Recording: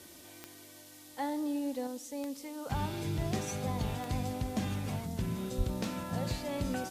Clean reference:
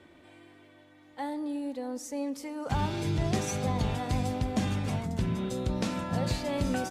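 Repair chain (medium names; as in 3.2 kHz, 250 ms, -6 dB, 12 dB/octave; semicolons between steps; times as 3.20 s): de-click; de-plosive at 5.57 s; noise print and reduce 6 dB; trim 0 dB, from 1.87 s +5 dB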